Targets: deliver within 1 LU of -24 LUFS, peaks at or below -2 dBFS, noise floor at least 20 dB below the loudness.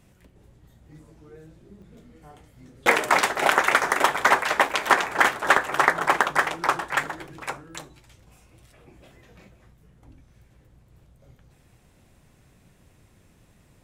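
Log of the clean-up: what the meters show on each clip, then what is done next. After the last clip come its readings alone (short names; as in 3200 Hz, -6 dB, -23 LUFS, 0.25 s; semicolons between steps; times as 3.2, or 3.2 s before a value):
dropouts 7; longest dropout 3.7 ms; loudness -21.5 LUFS; peak -1.5 dBFS; loudness target -24.0 LUFS
-> interpolate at 1.82/2.98/4.17/4.69/5.57/6.23/7.03, 3.7 ms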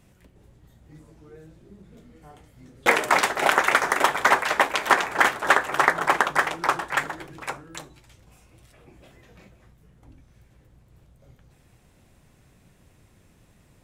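dropouts 0; loudness -21.5 LUFS; peak -1.5 dBFS; loudness target -24.0 LUFS
-> gain -2.5 dB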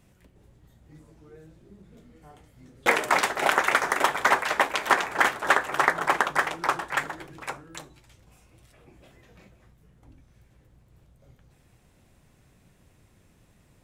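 loudness -24.0 LUFS; peak -4.0 dBFS; noise floor -61 dBFS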